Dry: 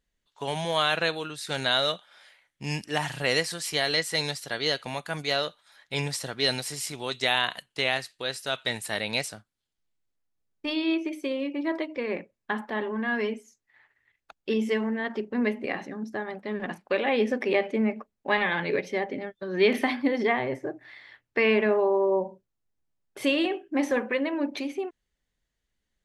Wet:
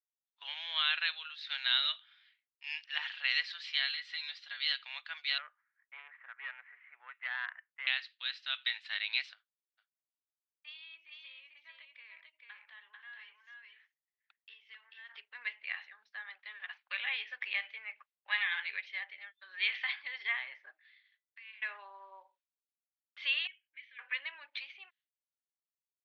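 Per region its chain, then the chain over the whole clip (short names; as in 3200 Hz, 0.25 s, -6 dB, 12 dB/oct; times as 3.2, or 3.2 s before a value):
3.91–4.58 compressor 5:1, threshold -27 dBFS + notch comb 220 Hz
5.38–7.87 steep low-pass 2000 Hz 48 dB/oct + core saturation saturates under 810 Hz
9.33–15.09 compressor 2:1, threshold -50 dBFS + echo 0.442 s -3 dB
20.81–21.62 tilt shelf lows -6.5 dB, about 1300 Hz + compressor 12:1, threshold -34 dBFS + resonator 220 Hz, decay 1.2 s, mix 70%
23.47–23.99 vowel filter i + bell 260 Hz -10 dB 1.4 oct
whole clip: steep low-pass 3900 Hz 36 dB/oct; expander -48 dBFS; Bessel high-pass 2300 Hz, order 4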